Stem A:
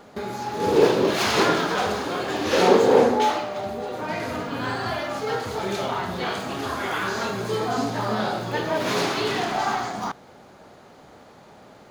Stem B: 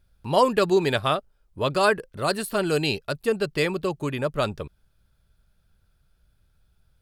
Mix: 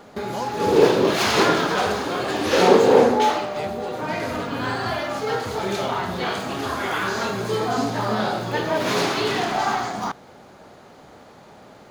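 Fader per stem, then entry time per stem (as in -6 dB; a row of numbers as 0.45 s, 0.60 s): +2.0 dB, -13.0 dB; 0.00 s, 0.00 s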